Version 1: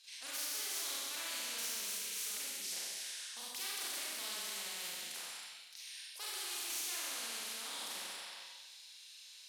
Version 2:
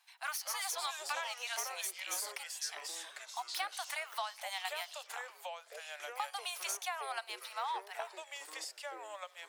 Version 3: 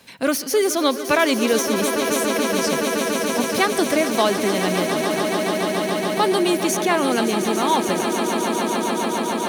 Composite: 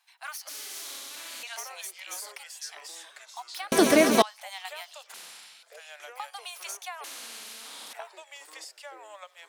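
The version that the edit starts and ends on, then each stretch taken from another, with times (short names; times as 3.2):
2
0.49–1.43 from 1
3.72–4.22 from 3
5.14–5.63 from 1
7.04–7.93 from 1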